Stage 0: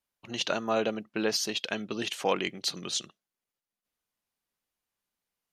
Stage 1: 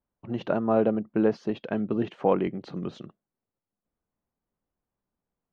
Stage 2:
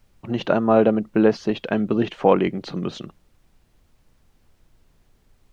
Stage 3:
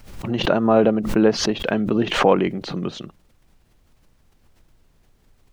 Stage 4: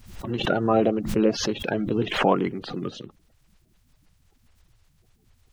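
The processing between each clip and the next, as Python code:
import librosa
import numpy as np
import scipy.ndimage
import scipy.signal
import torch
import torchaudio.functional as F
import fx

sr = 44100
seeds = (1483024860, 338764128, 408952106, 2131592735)

y1 = scipy.signal.sosfilt(scipy.signal.butter(2, 1100.0, 'lowpass', fs=sr, output='sos'), x)
y1 = fx.low_shelf(y1, sr, hz=370.0, db=9.0)
y1 = y1 * 10.0 ** (2.5 / 20.0)
y2 = fx.dmg_noise_colour(y1, sr, seeds[0], colour='brown', level_db=-63.0)
y2 = fx.high_shelf(y2, sr, hz=2100.0, db=8.5)
y2 = y2 * 10.0 ** (6.0 / 20.0)
y3 = fx.pre_swell(y2, sr, db_per_s=74.0)
y4 = fx.spec_quant(y3, sr, step_db=30)
y4 = y4 * 10.0 ** (-4.0 / 20.0)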